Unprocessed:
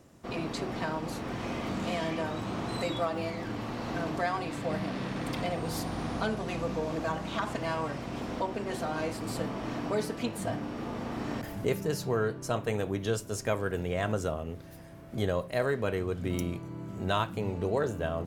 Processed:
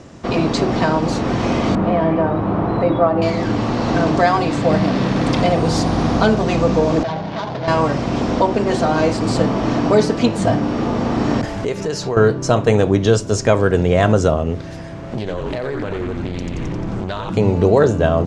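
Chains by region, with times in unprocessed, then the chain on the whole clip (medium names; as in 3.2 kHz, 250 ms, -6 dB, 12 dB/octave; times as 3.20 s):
1.75–3.22 s: low-pass 1.4 kHz + hum notches 60/120/180/240/300/360/420/480/540 Hz
7.03–7.68 s: median filter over 25 samples + hard clipper -33 dBFS + cabinet simulation 130–5200 Hz, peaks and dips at 230 Hz -10 dB, 340 Hz -9 dB, 520 Hz -4 dB, 1.2 kHz -6 dB, 2.7 kHz -4 dB
11.46–12.17 s: peaking EQ 150 Hz -7.5 dB 2.1 oct + compression 3:1, threshold -36 dBFS
14.94–17.30 s: frequency-shifting echo 88 ms, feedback 59%, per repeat -120 Hz, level -5 dB + compression 16:1, threshold -36 dBFS + loudspeaker Doppler distortion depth 0.41 ms
whole clip: low-pass 6.9 kHz 24 dB/octave; dynamic bell 2.2 kHz, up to -5 dB, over -48 dBFS, Q 0.7; loudness maximiser +18.5 dB; trim -1 dB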